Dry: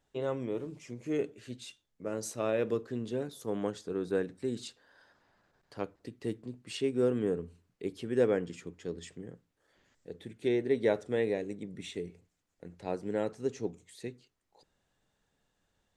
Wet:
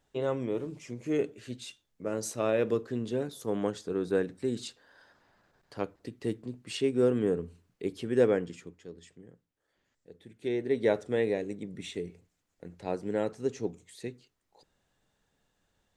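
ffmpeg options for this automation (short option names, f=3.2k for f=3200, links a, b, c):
-af "volume=12.5dB,afade=t=out:st=8.26:d=0.61:silence=0.298538,afade=t=in:st=10.22:d=0.69:silence=0.334965"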